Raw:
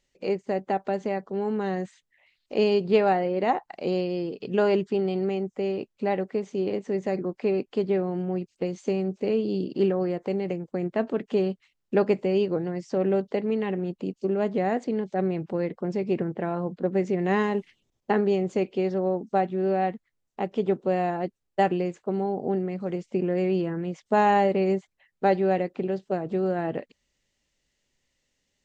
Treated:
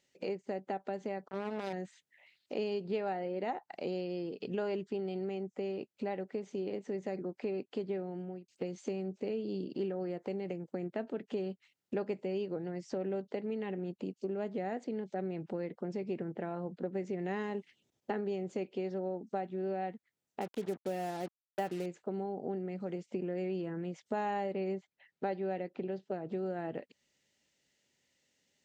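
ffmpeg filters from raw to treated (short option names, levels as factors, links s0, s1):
-filter_complex "[0:a]asettb=1/sr,asplit=3[s0][s1][s2];[s0]atrim=end=1.284[s3];[s1]atrim=start=1.28:end=1.73,asetpts=PTS-STARTPTS,afade=t=in:d=0.004:c=qsin,afade=t=out:st=0.446:d=0.004:c=qsin,acrusher=bits=3:mix=0:aa=0.5[s4];[s2]atrim=start=1.726[s5];[s3][s4]acrossfade=d=0.004:c1=hsin:c2=qsin[s6];[s6][s5]acrossfade=d=0.004:c1=qsin:c2=hsin,asettb=1/sr,asplit=3[s7][s8][s9];[s7]atrim=end=20.414[s10];[s8]atrim=start=20.41:end=21.86,asetpts=PTS-STARTPTS,afade=t=in:d=0.004:c=qsin,afade=t=out:st=1.446:d=0.004:c=qsin,acrusher=bits=5:mix=0:aa=0.5[s11];[s9]atrim=start=21.856[s12];[s10][s11]acrossfade=d=0.004:c1=hsin:c2=qsin[s13];[s13][s12]acrossfade=d=0.004:c1=qsin:c2=hsin,asettb=1/sr,asplit=3[s14][s15][s16];[s14]atrim=end=24.524[s17];[s15]atrim=start=24.52:end=26.33,asetpts=PTS-STARTPTS,afade=t=in:d=0.004:c=qsin,afade=t=out:st=1.806:d=0.004:c=qsin,lowpass=5800[s18];[s16]atrim=start=26.326[s19];[s17][s18]acrossfade=d=0.004:c1=hsin:c2=qsin[s20];[s20][s19]acrossfade=d=0.004:c1=qsin:c2=hsin,asplit=2[s21][s22];[s21]atrim=end=8.48,asetpts=PTS-STARTPTS,afade=t=out:st=7.92:d=0.56[s23];[s22]atrim=start=8.48,asetpts=PTS-STARTPTS,afade=t=in:d=0.004:c=hsin[s24];[s23][s24]concat=n=2:v=0:a=1,highpass=130,bandreject=f=1100:w=8.2,acompressor=threshold=0.0112:ratio=2.5"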